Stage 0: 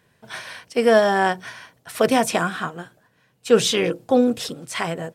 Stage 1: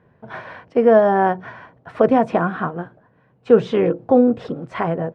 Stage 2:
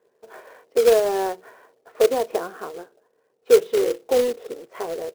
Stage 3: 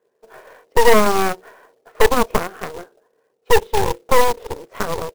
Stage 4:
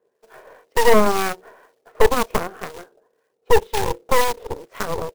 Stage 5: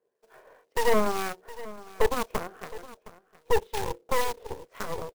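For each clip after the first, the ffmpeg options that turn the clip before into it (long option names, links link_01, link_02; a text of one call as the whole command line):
ffmpeg -i in.wav -filter_complex "[0:a]lowpass=1100,asplit=2[link_01][link_02];[link_02]acompressor=threshold=-26dB:ratio=6,volume=0dB[link_03];[link_01][link_03]amix=inputs=2:normalize=0,volume=1.5dB" out.wav
ffmpeg -i in.wav -af "highpass=frequency=430:width_type=q:width=4.9,acrusher=bits=3:mode=log:mix=0:aa=0.000001,volume=-13dB" out.wav
ffmpeg -i in.wav -af "dynaudnorm=framelen=250:gausssize=3:maxgain=5.5dB,aeval=exprs='0.944*(cos(1*acos(clip(val(0)/0.944,-1,1)))-cos(1*PI/2))+0.335*(cos(8*acos(clip(val(0)/0.944,-1,1)))-cos(8*PI/2))':channel_layout=same,volume=-2.5dB" out.wav
ffmpeg -i in.wav -filter_complex "[0:a]acrossover=split=1200[link_01][link_02];[link_01]aeval=exprs='val(0)*(1-0.5/2+0.5/2*cos(2*PI*2*n/s))':channel_layout=same[link_03];[link_02]aeval=exprs='val(0)*(1-0.5/2-0.5/2*cos(2*PI*2*n/s))':channel_layout=same[link_04];[link_03][link_04]amix=inputs=2:normalize=0" out.wav
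ffmpeg -i in.wav -af "aecho=1:1:715:0.133,volume=-9dB" out.wav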